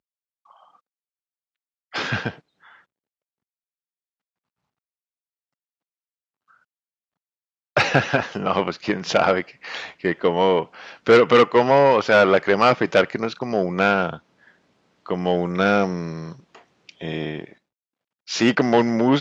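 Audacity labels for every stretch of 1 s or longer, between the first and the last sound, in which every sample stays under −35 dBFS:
2.340000	7.770000	silence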